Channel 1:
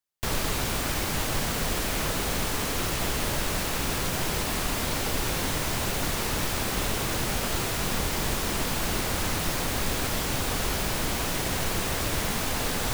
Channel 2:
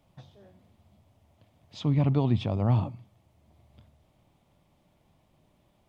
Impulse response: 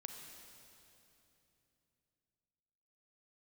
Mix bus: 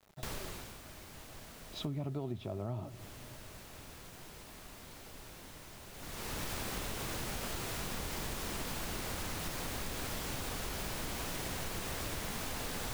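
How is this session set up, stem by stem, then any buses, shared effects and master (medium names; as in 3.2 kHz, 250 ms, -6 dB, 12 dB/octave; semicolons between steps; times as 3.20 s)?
-3.5 dB, 0.00 s, no send, auto duck -20 dB, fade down 0.80 s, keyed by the second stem
-3.5 dB, 0.00 s, send -17.5 dB, small resonant body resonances 380/630/1300/3900 Hz, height 12 dB, ringing for 50 ms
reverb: on, RT60 3.1 s, pre-delay 33 ms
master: word length cut 10-bit, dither none; compression 6:1, threshold -36 dBFS, peak gain reduction 15.5 dB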